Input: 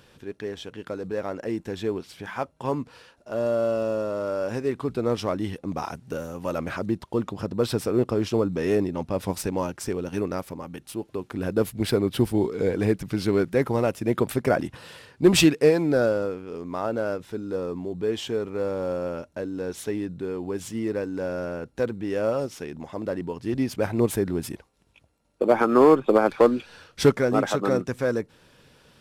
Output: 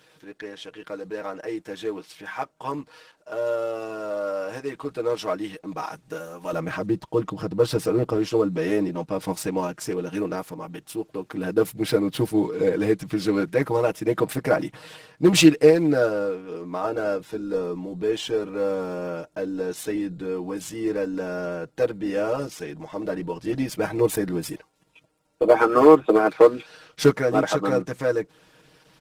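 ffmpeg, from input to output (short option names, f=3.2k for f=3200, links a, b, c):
-af "asetnsamples=n=441:p=0,asendcmd='6.53 highpass f 61;8.17 highpass f 180',highpass=f=510:p=1,aecho=1:1:6.4:0.9" -ar 48000 -c:a libopus -b:a 16k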